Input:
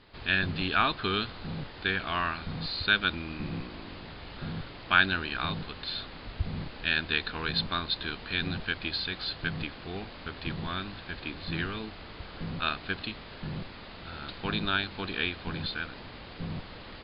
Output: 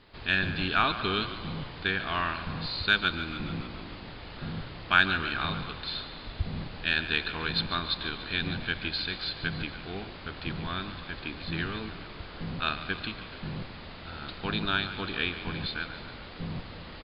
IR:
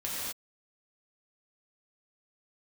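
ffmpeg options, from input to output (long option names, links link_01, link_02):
-filter_complex "[0:a]aeval=exprs='0.473*(cos(1*acos(clip(val(0)/0.473,-1,1)))-cos(1*PI/2))+0.00299*(cos(7*acos(clip(val(0)/0.473,-1,1)))-cos(7*PI/2))':channel_layout=same,asplit=8[link_01][link_02][link_03][link_04][link_05][link_06][link_07][link_08];[link_02]adelay=143,afreqshift=-38,volume=-13dB[link_09];[link_03]adelay=286,afreqshift=-76,volume=-16.9dB[link_10];[link_04]adelay=429,afreqshift=-114,volume=-20.8dB[link_11];[link_05]adelay=572,afreqshift=-152,volume=-24.6dB[link_12];[link_06]adelay=715,afreqshift=-190,volume=-28.5dB[link_13];[link_07]adelay=858,afreqshift=-228,volume=-32.4dB[link_14];[link_08]adelay=1001,afreqshift=-266,volume=-36.3dB[link_15];[link_01][link_09][link_10][link_11][link_12][link_13][link_14][link_15]amix=inputs=8:normalize=0,asplit=2[link_16][link_17];[1:a]atrim=start_sample=2205,asetrate=27783,aresample=44100[link_18];[link_17][link_18]afir=irnorm=-1:irlink=0,volume=-25dB[link_19];[link_16][link_19]amix=inputs=2:normalize=0"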